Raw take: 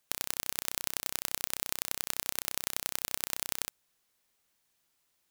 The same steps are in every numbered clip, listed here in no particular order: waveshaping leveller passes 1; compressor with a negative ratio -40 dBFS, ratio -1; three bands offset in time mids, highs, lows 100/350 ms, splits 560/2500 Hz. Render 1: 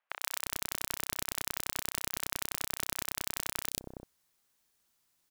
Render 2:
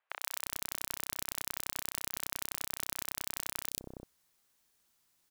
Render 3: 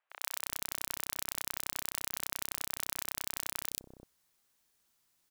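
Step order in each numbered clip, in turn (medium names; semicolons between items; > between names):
three bands offset in time > compressor with a negative ratio > waveshaping leveller; waveshaping leveller > three bands offset in time > compressor with a negative ratio; compressor with a negative ratio > waveshaping leveller > three bands offset in time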